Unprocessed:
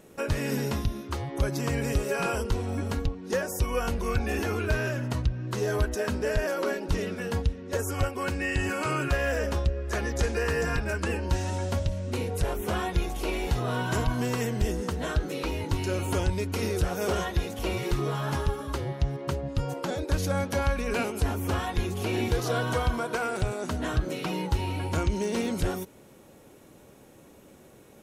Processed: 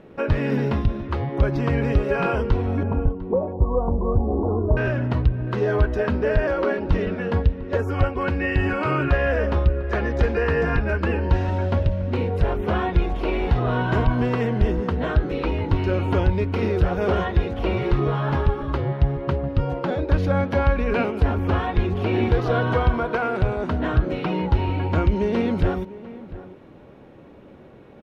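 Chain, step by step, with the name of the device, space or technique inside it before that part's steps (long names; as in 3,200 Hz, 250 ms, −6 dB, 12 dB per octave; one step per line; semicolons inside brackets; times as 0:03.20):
0:02.83–0:04.77: Butterworth low-pass 1,100 Hz 72 dB per octave
shout across a valley (high-frequency loss of the air 360 metres; slap from a distant wall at 120 metres, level −16 dB)
level +7.5 dB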